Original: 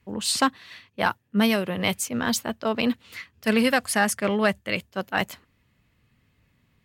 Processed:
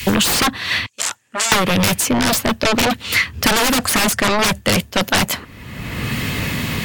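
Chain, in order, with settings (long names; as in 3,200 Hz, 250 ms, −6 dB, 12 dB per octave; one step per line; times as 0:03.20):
sine wavefolder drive 20 dB, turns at −6.5 dBFS
0:00.86–0:01.52: resonant band-pass 7,400 Hz, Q 3.6
multiband upward and downward compressor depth 100%
level −5.5 dB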